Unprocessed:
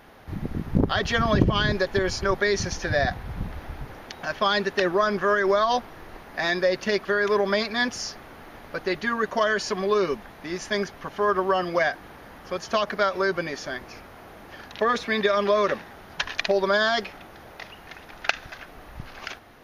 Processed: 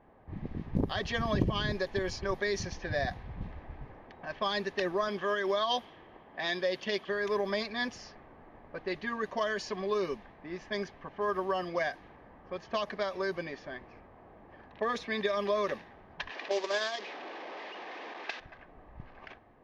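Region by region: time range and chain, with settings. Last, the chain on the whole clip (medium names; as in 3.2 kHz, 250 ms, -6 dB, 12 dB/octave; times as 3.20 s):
5.08–7.09 s: high-pass 140 Hz 6 dB/octave + peaking EQ 3.2 kHz +12.5 dB 0.25 oct
16.31–18.40 s: one-bit delta coder 32 kbps, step -19 dBFS + gate -22 dBFS, range -7 dB + high-pass 300 Hz 24 dB/octave
whole clip: level-controlled noise filter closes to 1.2 kHz, open at -18 dBFS; band-stop 1.4 kHz, Q 5.3; trim -8.5 dB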